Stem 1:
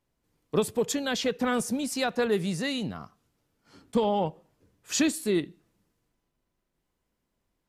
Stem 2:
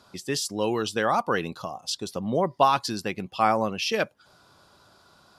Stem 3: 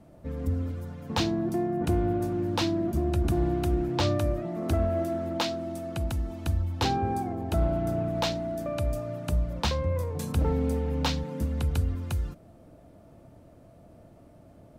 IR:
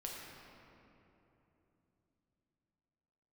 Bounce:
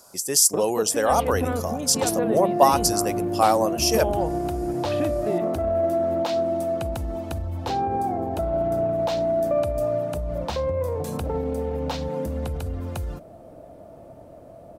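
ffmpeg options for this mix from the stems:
-filter_complex "[0:a]acompressor=threshold=0.02:ratio=4,lowpass=f=3100:w=0.5412,lowpass=f=3100:w=1.3066,volume=1.19[s0];[1:a]aexciter=amount=13.1:drive=4.4:freq=5500,volume=0.562[s1];[2:a]highshelf=f=8200:g=5,alimiter=level_in=1.19:limit=0.0631:level=0:latency=1:release=49,volume=0.841,adelay=850,volume=1.26[s2];[s0][s1][s2]amix=inputs=3:normalize=0,equalizer=f=620:w=0.93:g=11"

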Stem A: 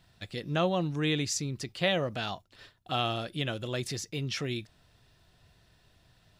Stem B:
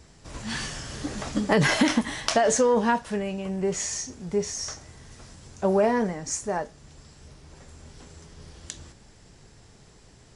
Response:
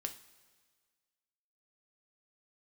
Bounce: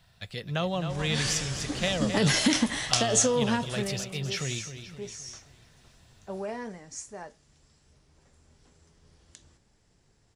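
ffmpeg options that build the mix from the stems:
-filter_complex "[0:a]equalizer=f=300:w=2.3:g=-12.5,volume=1.26,asplit=2[s0][s1];[s1]volume=0.299[s2];[1:a]adynamicequalizer=threshold=0.0112:dfrequency=1700:dqfactor=0.7:tfrequency=1700:tqfactor=0.7:attack=5:release=100:ratio=0.375:range=3:mode=boostabove:tftype=highshelf,adelay=650,volume=0.794,afade=t=out:st=3.69:d=0.45:silence=0.251189[s3];[s2]aecho=0:1:261|522|783|1044|1305|1566|1827:1|0.49|0.24|0.118|0.0576|0.0282|0.0138[s4];[s0][s3][s4]amix=inputs=3:normalize=0,acrossover=split=440|3000[s5][s6][s7];[s6]acompressor=threshold=0.0316:ratio=6[s8];[s5][s8][s7]amix=inputs=3:normalize=0"

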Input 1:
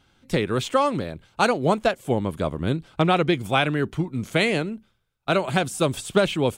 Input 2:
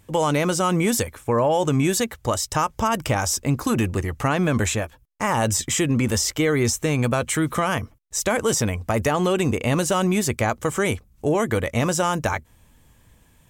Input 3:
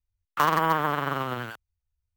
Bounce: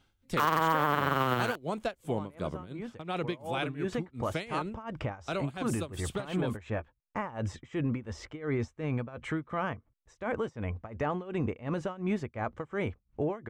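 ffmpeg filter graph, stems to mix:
-filter_complex "[0:a]volume=0.473[s0];[1:a]lowpass=2000,adelay=1950,volume=0.501,afade=t=in:st=3.38:d=0.33:silence=0.251189[s1];[2:a]volume=1.41[s2];[s0][s1]amix=inputs=2:normalize=0,tremolo=f=2.8:d=0.9,alimiter=limit=0.0841:level=0:latency=1:release=75,volume=1[s3];[s2][s3]amix=inputs=2:normalize=0,alimiter=limit=0.2:level=0:latency=1:release=166"

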